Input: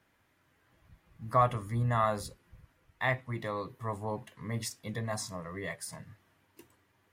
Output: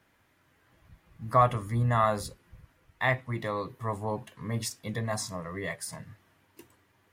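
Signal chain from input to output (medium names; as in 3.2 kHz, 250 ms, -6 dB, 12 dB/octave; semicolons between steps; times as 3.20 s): 4.13–4.74 s: band-stop 2 kHz, Q 12; trim +3.5 dB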